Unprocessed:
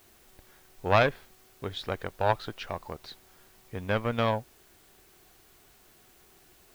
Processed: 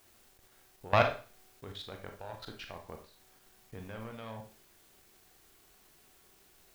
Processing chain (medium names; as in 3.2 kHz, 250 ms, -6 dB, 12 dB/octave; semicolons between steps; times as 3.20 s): level held to a coarse grid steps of 21 dB; Schroeder reverb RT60 0.38 s, combs from 28 ms, DRR 4 dB; word length cut 10-bit, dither none; trim -2.5 dB